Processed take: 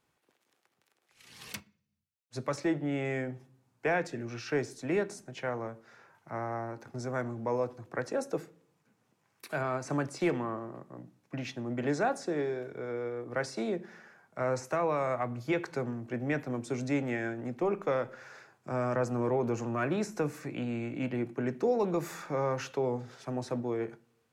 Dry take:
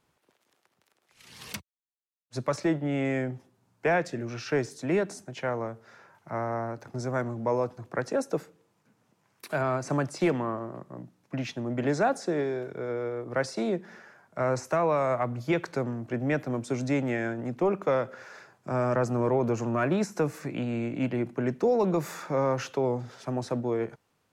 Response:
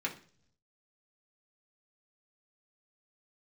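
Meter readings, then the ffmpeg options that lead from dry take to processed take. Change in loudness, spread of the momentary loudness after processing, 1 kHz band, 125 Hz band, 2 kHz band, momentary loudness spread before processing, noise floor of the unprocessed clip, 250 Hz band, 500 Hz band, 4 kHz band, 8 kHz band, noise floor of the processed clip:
-4.0 dB, 11 LU, -4.0 dB, -5.0 dB, -3.0 dB, 11 LU, -73 dBFS, -4.0 dB, -4.0 dB, -3.5 dB, -3.5 dB, -76 dBFS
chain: -filter_complex "[0:a]asplit=2[a][b];[1:a]atrim=start_sample=2205[c];[b][c]afir=irnorm=-1:irlink=0,volume=-12.5dB[d];[a][d]amix=inputs=2:normalize=0,volume=-5dB"

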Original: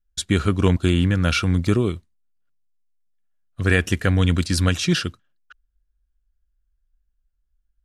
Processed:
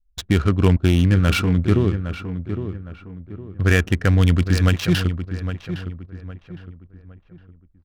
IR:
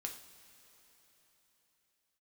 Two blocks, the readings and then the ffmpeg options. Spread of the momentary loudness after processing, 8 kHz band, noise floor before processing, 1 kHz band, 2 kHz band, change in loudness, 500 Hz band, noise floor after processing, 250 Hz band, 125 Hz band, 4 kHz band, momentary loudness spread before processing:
20 LU, -4.5 dB, -72 dBFS, +0.5 dB, 0.0 dB, +0.5 dB, +1.0 dB, -55 dBFS, +1.5 dB, +3.5 dB, -2.0 dB, 5 LU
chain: -filter_complex "[0:a]lowshelf=f=100:g=6.5,adynamicsmooth=sensitivity=3:basefreq=640,asplit=2[a][b];[b]adelay=811,lowpass=f=2k:p=1,volume=-9.5dB,asplit=2[c][d];[d]adelay=811,lowpass=f=2k:p=1,volume=0.37,asplit=2[e][f];[f]adelay=811,lowpass=f=2k:p=1,volume=0.37,asplit=2[g][h];[h]adelay=811,lowpass=f=2k:p=1,volume=0.37[i];[a][c][e][g][i]amix=inputs=5:normalize=0"

